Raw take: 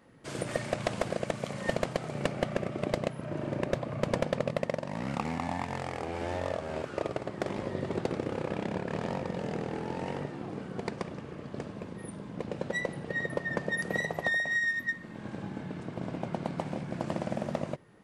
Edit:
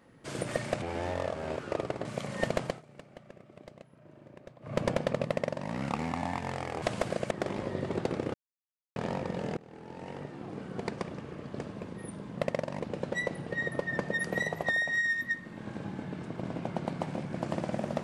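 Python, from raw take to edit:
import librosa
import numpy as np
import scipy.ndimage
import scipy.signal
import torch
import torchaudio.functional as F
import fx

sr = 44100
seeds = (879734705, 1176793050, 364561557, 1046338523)

y = fx.edit(x, sr, fx.swap(start_s=0.82, length_s=0.49, other_s=6.08, other_length_s=1.23),
    fx.fade_down_up(start_s=1.92, length_s=2.11, db=-19.5, fade_s=0.16),
    fx.duplicate(start_s=4.53, length_s=0.42, to_s=12.38),
    fx.silence(start_s=8.34, length_s=0.62),
    fx.fade_in_from(start_s=9.57, length_s=1.26, floor_db=-21.5), tone=tone)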